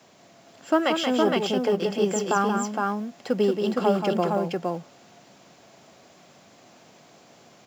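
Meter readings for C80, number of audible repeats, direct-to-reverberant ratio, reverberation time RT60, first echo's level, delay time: no reverb audible, 2, no reverb audible, no reverb audible, −6.0 dB, 180 ms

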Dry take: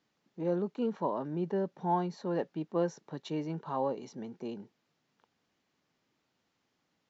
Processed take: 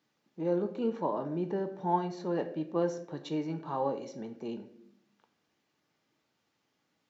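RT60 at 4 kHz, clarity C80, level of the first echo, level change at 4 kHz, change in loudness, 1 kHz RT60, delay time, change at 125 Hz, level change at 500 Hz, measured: 0.45 s, 14.0 dB, no echo audible, +1.0 dB, +1.0 dB, 0.50 s, no echo audible, −0.5 dB, +1.0 dB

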